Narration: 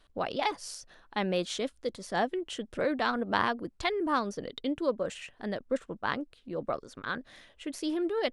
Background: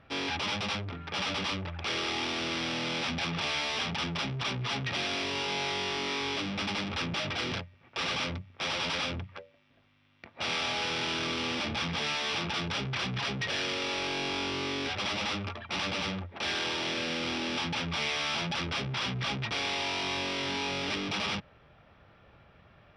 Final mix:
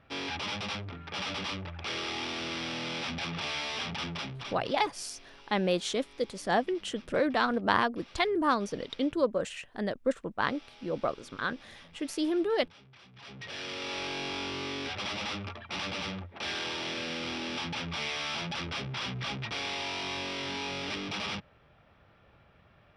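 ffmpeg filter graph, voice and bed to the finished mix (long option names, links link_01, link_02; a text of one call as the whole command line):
ffmpeg -i stem1.wav -i stem2.wav -filter_complex "[0:a]adelay=4350,volume=2dB[link_01];[1:a]volume=17.5dB,afade=type=out:start_time=4.1:duration=0.67:silence=0.0944061,afade=type=in:start_time=13.13:duration=0.85:silence=0.0944061[link_02];[link_01][link_02]amix=inputs=2:normalize=0" out.wav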